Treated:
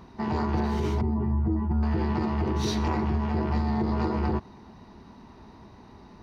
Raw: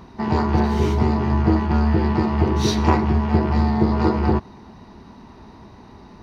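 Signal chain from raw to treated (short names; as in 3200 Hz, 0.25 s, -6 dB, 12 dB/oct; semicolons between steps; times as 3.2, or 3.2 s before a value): 1.01–1.83 spectral contrast raised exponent 1.6; limiter -12.5 dBFS, peak gain reduction 8.5 dB; gain -5.5 dB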